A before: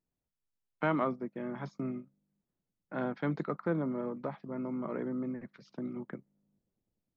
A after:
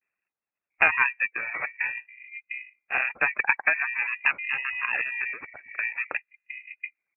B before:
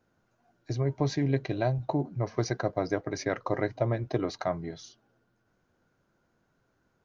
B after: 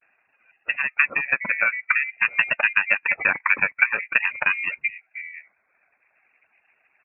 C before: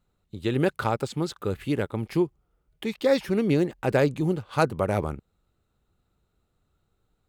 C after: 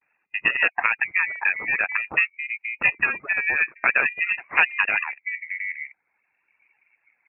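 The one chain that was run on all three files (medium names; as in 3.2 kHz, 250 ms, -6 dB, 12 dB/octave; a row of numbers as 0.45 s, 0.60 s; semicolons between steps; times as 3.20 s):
bands offset in time highs, lows 710 ms, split 190 Hz; reverb removal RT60 0.91 s; ring modulator 420 Hz; compression 3:1, threshold -33 dBFS; peaking EQ 200 Hz +9 dB 0.34 oct; frequency inversion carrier 2.6 kHz; vibrato 0.49 Hz 70 cents; harmonic-percussive split harmonic -10 dB; high-pass 150 Hz 6 dB/octave; peak normalisation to -2 dBFS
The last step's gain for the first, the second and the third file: +17.5 dB, +17.0 dB, +15.5 dB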